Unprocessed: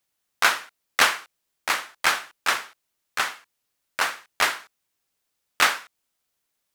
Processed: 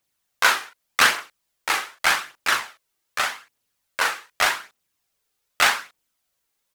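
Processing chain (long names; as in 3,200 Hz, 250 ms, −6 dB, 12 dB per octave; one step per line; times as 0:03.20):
double-tracking delay 39 ms −4 dB
phase shifter 0.84 Hz, delay 2.6 ms, feedback 35%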